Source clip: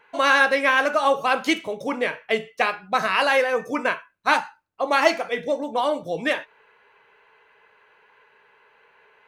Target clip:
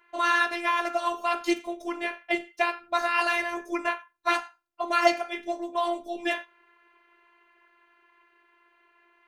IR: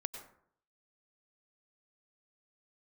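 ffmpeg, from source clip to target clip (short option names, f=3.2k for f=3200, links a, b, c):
-filter_complex "[1:a]atrim=start_sample=2205,atrim=end_sample=3969[a];[0:a][a]afir=irnorm=-1:irlink=0,dynaudnorm=f=270:g=17:m=3.5dB,afftfilt=real='hypot(re,im)*cos(PI*b)':imag='0':win_size=512:overlap=0.75"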